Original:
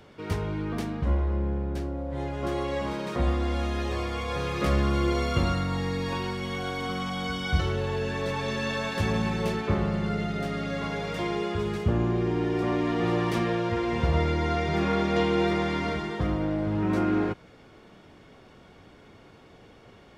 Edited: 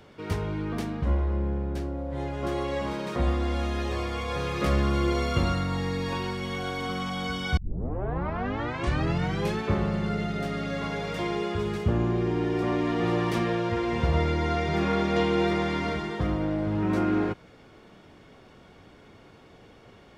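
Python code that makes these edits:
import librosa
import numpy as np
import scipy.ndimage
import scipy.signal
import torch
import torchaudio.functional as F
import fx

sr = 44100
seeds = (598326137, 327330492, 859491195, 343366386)

y = fx.edit(x, sr, fx.tape_start(start_s=7.57, length_s=2.02), tone=tone)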